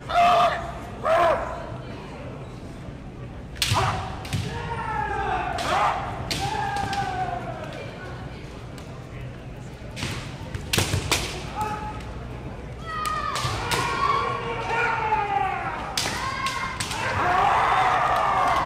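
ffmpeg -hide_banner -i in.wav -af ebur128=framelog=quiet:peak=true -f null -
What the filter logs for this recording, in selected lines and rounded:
Integrated loudness:
  I:         -24.7 LUFS
  Threshold: -35.7 LUFS
Loudness range:
  LRA:         7.1 LU
  Threshold: -46.7 LUFS
  LRA low:   -30.7 LUFS
  LRA high:  -23.6 LUFS
True peak:
  Peak:      -10.0 dBFS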